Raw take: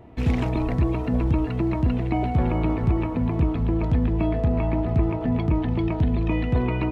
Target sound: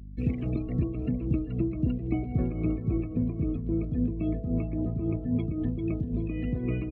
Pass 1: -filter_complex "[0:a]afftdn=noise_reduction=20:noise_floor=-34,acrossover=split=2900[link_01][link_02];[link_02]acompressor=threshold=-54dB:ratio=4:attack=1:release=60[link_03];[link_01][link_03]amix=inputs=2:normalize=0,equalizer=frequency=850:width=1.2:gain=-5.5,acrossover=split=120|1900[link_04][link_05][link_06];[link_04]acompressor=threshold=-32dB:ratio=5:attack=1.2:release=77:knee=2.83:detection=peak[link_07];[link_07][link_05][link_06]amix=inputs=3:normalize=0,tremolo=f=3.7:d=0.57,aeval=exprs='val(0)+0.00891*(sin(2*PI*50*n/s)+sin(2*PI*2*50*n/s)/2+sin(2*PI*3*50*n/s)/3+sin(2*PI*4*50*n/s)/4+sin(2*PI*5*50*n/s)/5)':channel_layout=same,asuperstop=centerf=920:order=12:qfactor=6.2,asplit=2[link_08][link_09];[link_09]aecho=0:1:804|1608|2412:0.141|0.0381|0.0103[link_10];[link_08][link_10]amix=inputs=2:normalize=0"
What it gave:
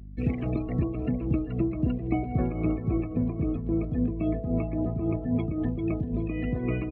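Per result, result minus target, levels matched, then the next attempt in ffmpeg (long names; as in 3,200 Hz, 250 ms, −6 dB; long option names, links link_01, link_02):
1,000 Hz band +7.5 dB; 2,000 Hz band +4.0 dB
-filter_complex "[0:a]afftdn=noise_reduction=20:noise_floor=-34,acrossover=split=2900[link_01][link_02];[link_02]acompressor=threshold=-54dB:ratio=4:attack=1:release=60[link_03];[link_01][link_03]amix=inputs=2:normalize=0,equalizer=frequency=850:width=1.2:gain=-16,acrossover=split=120|1900[link_04][link_05][link_06];[link_04]acompressor=threshold=-32dB:ratio=5:attack=1.2:release=77:knee=2.83:detection=peak[link_07];[link_07][link_05][link_06]amix=inputs=3:normalize=0,tremolo=f=3.7:d=0.57,aeval=exprs='val(0)+0.00891*(sin(2*PI*50*n/s)+sin(2*PI*2*50*n/s)/2+sin(2*PI*3*50*n/s)/3+sin(2*PI*4*50*n/s)/4+sin(2*PI*5*50*n/s)/5)':channel_layout=same,asuperstop=centerf=920:order=12:qfactor=6.2,asplit=2[link_08][link_09];[link_09]aecho=0:1:804|1608|2412:0.141|0.0381|0.0103[link_10];[link_08][link_10]amix=inputs=2:normalize=0"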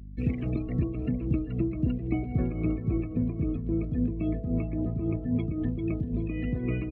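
2,000 Hz band +3.0 dB
-filter_complex "[0:a]afftdn=noise_reduction=20:noise_floor=-34,acrossover=split=2900[link_01][link_02];[link_02]acompressor=threshold=-54dB:ratio=4:attack=1:release=60[link_03];[link_01][link_03]amix=inputs=2:normalize=0,equalizer=frequency=850:width=1.2:gain=-16,acrossover=split=120|1900[link_04][link_05][link_06];[link_04]acompressor=threshold=-32dB:ratio=5:attack=1.2:release=77:knee=2.83:detection=peak[link_07];[link_07][link_05][link_06]amix=inputs=3:normalize=0,tremolo=f=3.7:d=0.57,aeval=exprs='val(0)+0.00891*(sin(2*PI*50*n/s)+sin(2*PI*2*50*n/s)/2+sin(2*PI*3*50*n/s)/3+sin(2*PI*4*50*n/s)/4+sin(2*PI*5*50*n/s)/5)':channel_layout=same,asuperstop=centerf=920:order=12:qfactor=6.2,equalizer=frequency=1800:width=1.7:gain=-5,asplit=2[link_08][link_09];[link_09]aecho=0:1:804|1608|2412:0.141|0.0381|0.0103[link_10];[link_08][link_10]amix=inputs=2:normalize=0"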